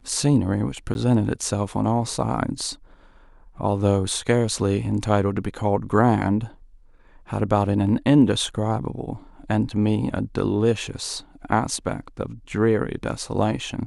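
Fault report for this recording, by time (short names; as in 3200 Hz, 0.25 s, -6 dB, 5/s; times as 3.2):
0.94–0.95 gap 11 ms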